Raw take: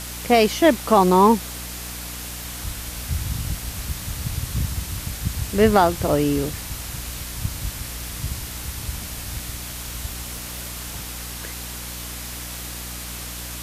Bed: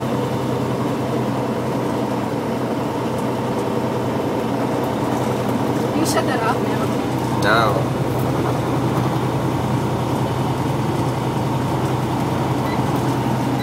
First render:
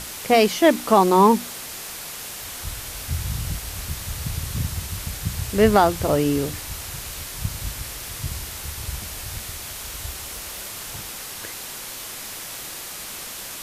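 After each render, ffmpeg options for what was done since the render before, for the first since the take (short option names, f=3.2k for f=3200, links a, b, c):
-af "bandreject=f=60:t=h:w=6,bandreject=f=120:t=h:w=6,bandreject=f=180:t=h:w=6,bandreject=f=240:t=h:w=6,bandreject=f=300:t=h:w=6"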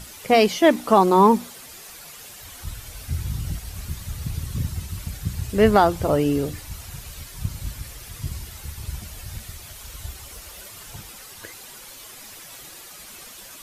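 -af "afftdn=nr=10:nf=-35"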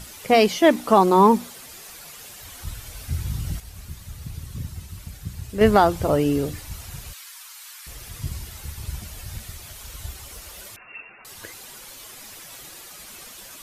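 -filter_complex "[0:a]asettb=1/sr,asplit=3[a][b][c];[a]atrim=end=7.134[d];[b]atrim=start=7.13:end=7.87,asetpts=PTS-STARTPTS,afade=t=in:d=0.004:c=qsin,afade=t=out:st=0.736:d=0.004:c=qsin,highpass=f=1k:w=0.5412,highpass=f=1k:w=1.3066[e];[c]atrim=start=7.866[f];[d][e]acrossfade=d=0.004:c1=hsin:c2=qsin[g];[g][f]acrossfade=d=0.004:c1=qsin:c2=hsin,asettb=1/sr,asplit=3[h][i][j];[h]atrim=end=10.764[k];[i]atrim=start=10.76:end=11.25,asetpts=PTS-STARTPTS,afade=t=in:d=0.004:c=qsin,afade=t=out:st=0.486:d=0.004:c=qsin,lowpass=f=2.4k:t=q:w=0.5098,lowpass=f=2.4k:t=q:w=0.6013,lowpass=f=2.4k:t=q:w=0.9,lowpass=f=2.4k:t=q:w=2.563,afreqshift=-2800[l];[j]atrim=start=11.246[m];[k][l]acrossfade=d=0.004:c1=hsin:c2=qsin[n];[n][m]acrossfade=d=0.004:c1=qsin:c2=hsin,asplit=3[o][p][q];[o]atrim=end=3.602[r];[p]atrim=start=3.598:end=5.612,asetpts=PTS-STARTPTS,volume=-6dB[s];[q]atrim=start=5.608[t];[r][s]acrossfade=d=0.004:c1=hsin:c2=hsin[u];[u][t]acrossfade=d=0.004:c1=hsin:c2=hsin"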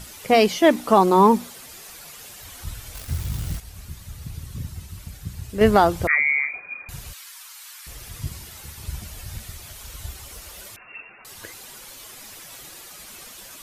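-filter_complex "[0:a]asettb=1/sr,asplit=3[a][b][c];[a]atrim=end=2.954[d];[b]atrim=start=2.95:end=3.58,asetpts=PTS-STARTPTS,afade=t=in:d=0.004:c=qsin,afade=t=out:st=0.626:d=0.004:c=qsin,acrusher=bits=7:dc=4:mix=0:aa=0.000001[e];[c]atrim=start=3.576[f];[d][e]acrossfade=d=0.004:c1=hsin:c2=qsin[g];[g][f]acrossfade=d=0.004:c1=qsin:c2=hsin,asettb=1/sr,asplit=3[h][i][j];[h]atrim=end=6.074[k];[i]atrim=start=6.07:end=6.89,asetpts=PTS-STARTPTS,afade=t=in:d=0.004:c=qsin,afade=t=out:st=0.816:d=0.004:c=qsin,lowpass=f=2.1k:t=q:w=0.5098,lowpass=f=2.1k:t=q:w=0.6013,lowpass=f=2.1k:t=q:w=0.9,lowpass=f=2.1k:t=q:w=2.563,afreqshift=-2500[l];[j]atrim=start=6.886[m];[k][l]acrossfade=d=0.004:c1=hsin:c2=qsin[n];[n][m]acrossfade=d=0.004:c1=qsin:c2=hsin,asettb=1/sr,asplit=3[o][p][q];[o]atrim=end=8.284[r];[p]atrim=start=8.28:end=8.85,asetpts=PTS-STARTPTS,afade=t=in:d=0.004:c=qsin,afade=t=out:st=0.566:d=0.004:c=qsin,lowshelf=f=93:g=-11.5[s];[q]atrim=start=8.846[t];[r][s]acrossfade=d=0.004:c1=hsin:c2=qsin[u];[u][t]acrossfade=d=0.004:c1=qsin:c2=hsin"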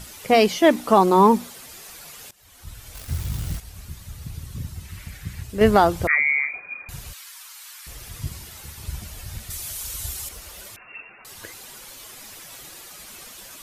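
-filter_complex "[0:a]asettb=1/sr,asplit=3[a][b][c];[a]atrim=end=4.854[d];[b]atrim=start=4.85:end=5.43,asetpts=PTS-STARTPTS,afade=t=in:d=0.004:c=qsin,afade=t=out:st=0.576:d=0.004:c=qsin,equalizer=f=2k:t=o:w=0.97:g=10.5[e];[c]atrim=start=5.426[f];[d][e]acrossfade=d=0.004:c1=hsin:c2=qsin[g];[g][f]acrossfade=d=0.004:c1=qsin:c2=hsin,asettb=1/sr,asplit=3[h][i][j];[h]atrim=end=9.504[k];[i]atrim=start=9.5:end=10.29,asetpts=PTS-STARTPTS,afade=t=in:d=0.004:c=qsin,afade=t=out:st=0.786:d=0.004:c=qsin,equalizer=f=11k:t=o:w=2.2:g=11[l];[j]atrim=start=10.286[m];[k][l]acrossfade=d=0.004:c1=hsin:c2=qsin[n];[n][m]acrossfade=d=0.004:c1=qsin:c2=hsin,asplit=2[o][p];[o]atrim=end=2.31,asetpts=PTS-STARTPTS,afade=t=out:st=2.306:d=0.004:c=hsin:silence=0.1[q];[p]atrim=start=2.31,asetpts=PTS-STARTPTS,afade=t=in:d=0.86:silence=0.1[r];[q][r]concat=n=2:v=0:a=1"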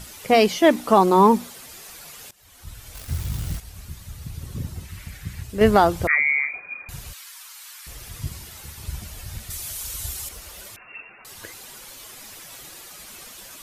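-filter_complex "[0:a]asettb=1/sr,asplit=3[a][b][c];[a]atrim=end=4.414[d];[b]atrim=start=4.41:end=4.85,asetpts=PTS-STARTPTS,afade=t=in:d=0.004:c=qsin,afade=t=out:st=0.436:d=0.004:c=qsin,equalizer=f=410:t=o:w=2.2:g=7.5[e];[c]atrim=start=4.846[f];[d][e]acrossfade=d=0.004:c1=hsin:c2=qsin[g];[g][f]acrossfade=d=0.004:c1=qsin:c2=hsin"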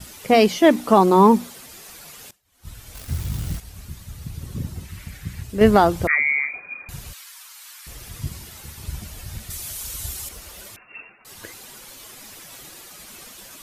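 -af "agate=range=-33dB:threshold=-41dB:ratio=3:detection=peak,equalizer=f=230:w=0.82:g=3.5"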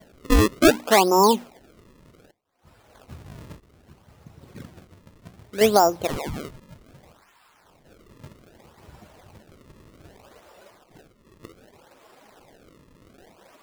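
-af "bandpass=f=630:t=q:w=1:csg=0,acrusher=samples=33:mix=1:aa=0.000001:lfo=1:lforange=52.8:lforate=0.64"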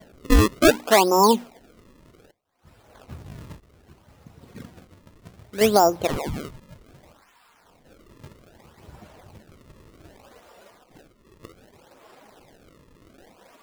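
-af "aphaser=in_gain=1:out_gain=1:delay=4.3:decay=0.23:speed=0.33:type=sinusoidal"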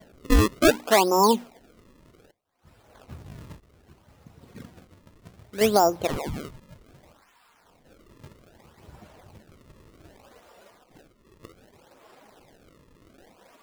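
-af "volume=-2.5dB"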